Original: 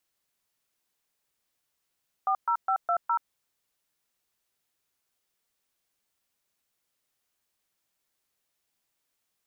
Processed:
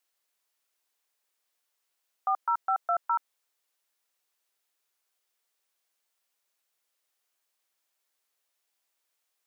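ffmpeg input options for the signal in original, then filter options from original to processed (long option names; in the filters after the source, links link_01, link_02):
-f lavfi -i "aevalsrc='0.0562*clip(min(mod(t,0.206),0.08-mod(t,0.206))/0.002,0,1)*(eq(floor(t/0.206),0)*(sin(2*PI*770*mod(t,0.206))+sin(2*PI*1209*mod(t,0.206)))+eq(floor(t/0.206),1)*(sin(2*PI*941*mod(t,0.206))+sin(2*PI*1336*mod(t,0.206)))+eq(floor(t/0.206),2)*(sin(2*PI*770*mod(t,0.206))+sin(2*PI*1336*mod(t,0.206)))+eq(floor(t/0.206),3)*(sin(2*PI*697*mod(t,0.206))+sin(2*PI*1336*mod(t,0.206)))+eq(floor(t/0.206),4)*(sin(2*PI*941*mod(t,0.206))+sin(2*PI*1336*mod(t,0.206))))':duration=1.03:sample_rate=44100"
-af "highpass=430"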